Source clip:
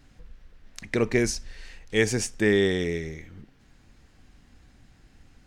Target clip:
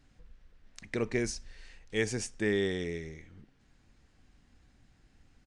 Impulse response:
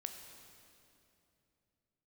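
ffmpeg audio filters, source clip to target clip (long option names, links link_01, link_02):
-af "aresample=22050,aresample=44100,volume=-8dB"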